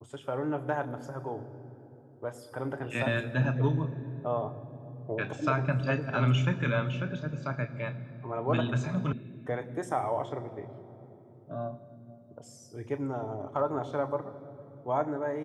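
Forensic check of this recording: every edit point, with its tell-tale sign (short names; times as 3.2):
9.13 sound cut off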